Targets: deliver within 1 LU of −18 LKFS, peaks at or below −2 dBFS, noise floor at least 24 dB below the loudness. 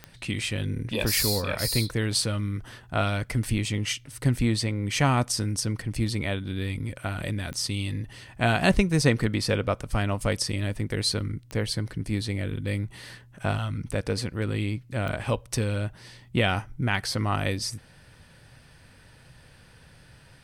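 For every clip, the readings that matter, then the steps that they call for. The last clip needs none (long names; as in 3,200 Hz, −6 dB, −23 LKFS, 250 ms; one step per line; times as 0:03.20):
number of clicks 4; integrated loudness −27.5 LKFS; sample peak −6.5 dBFS; target loudness −18.0 LKFS
→ click removal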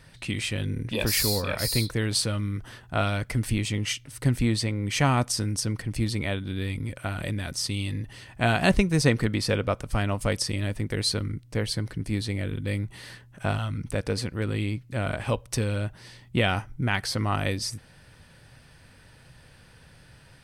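number of clicks 0; integrated loudness −27.5 LKFS; sample peak −6.5 dBFS; target loudness −18.0 LKFS
→ level +9.5 dB
brickwall limiter −2 dBFS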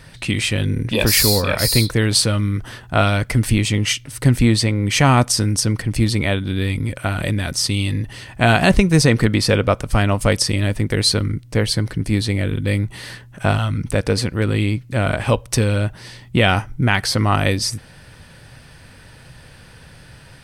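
integrated loudness −18.0 LKFS; sample peak −2.0 dBFS; background noise floor −44 dBFS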